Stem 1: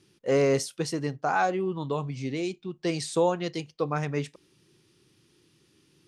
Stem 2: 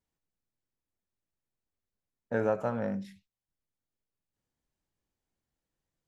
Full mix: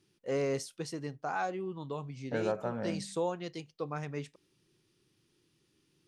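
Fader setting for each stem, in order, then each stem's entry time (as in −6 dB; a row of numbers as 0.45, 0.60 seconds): −9.0, −4.0 decibels; 0.00, 0.00 seconds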